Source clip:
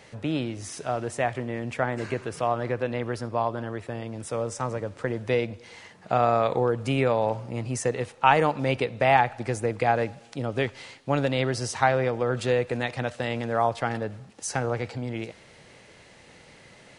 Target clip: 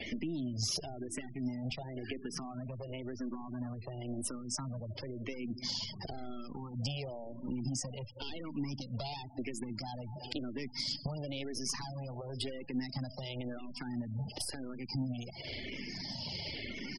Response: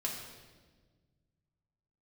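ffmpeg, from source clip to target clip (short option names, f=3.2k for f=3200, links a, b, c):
-filter_complex "[0:a]adynamicequalizer=threshold=0.00178:dfrequency=7400:dqfactor=3:tfrequency=7400:tqfactor=3:attack=5:release=100:ratio=0.375:range=2.5:mode=cutabove:tftype=bell,asetrate=46722,aresample=44100,atempo=0.943874,asoftclip=type=hard:threshold=-21dB,alimiter=level_in=7dB:limit=-24dB:level=0:latency=1:release=291,volume=-7dB,acompressor=threshold=-46dB:ratio=8,equalizer=f=250:t=o:w=0.33:g=5,equalizer=f=500:t=o:w=0.33:g=-9,equalizer=f=3.15k:t=o:w=0.33:g=4,equalizer=f=5k:t=o:w=0.33:g=12,aecho=1:1:778|1556|2334|3112:0.119|0.0606|0.0309|0.0158,aeval=exprs='0.0316*(cos(1*acos(clip(val(0)/0.0316,-1,1)))-cos(1*PI/2))+0.000355*(cos(2*acos(clip(val(0)/0.0316,-1,1)))-cos(2*PI/2))+0.001*(cos(3*acos(clip(val(0)/0.0316,-1,1)))-cos(3*PI/2))+0.00447*(cos(6*acos(clip(val(0)/0.0316,-1,1)))-cos(6*PI/2))+0.00126*(cos(8*acos(clip(val(0)/0.0316,-1,1)))-cos(8*PI/2))':c=same,acrossover=split=420|3000[a][b][c];[b]acompressor=threshold=-58dB:ratio=10[d];[a][d][c]amix=inputs=3:normalize=0,afftfilt=real='re*gte(hypot(re,im),0.00251)':imag='im*gte(hypot(re,im),0.00251)':win_size=1024:overlap=0.75,asplit=2[e][f];[f]afreqshift=-0.96[g];[e][g]amix=inputs=2:normalize=1,volume=15.5dB"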